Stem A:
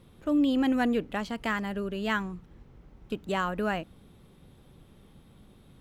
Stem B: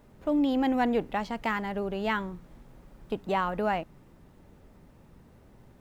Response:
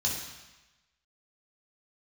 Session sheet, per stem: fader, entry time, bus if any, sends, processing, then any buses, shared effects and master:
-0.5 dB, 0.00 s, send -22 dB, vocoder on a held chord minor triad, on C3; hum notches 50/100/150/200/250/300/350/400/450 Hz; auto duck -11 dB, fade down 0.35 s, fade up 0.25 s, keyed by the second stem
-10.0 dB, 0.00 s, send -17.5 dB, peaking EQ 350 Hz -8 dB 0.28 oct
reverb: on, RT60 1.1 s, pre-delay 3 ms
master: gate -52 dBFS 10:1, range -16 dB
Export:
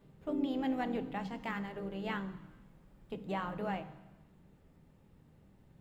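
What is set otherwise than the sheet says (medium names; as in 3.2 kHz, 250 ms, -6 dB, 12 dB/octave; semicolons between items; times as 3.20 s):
stem B: missing peaking EQ 350 Hz -8 dB 0.28 oct; master: missing gate -52 dBFS 10:1, range -16 dB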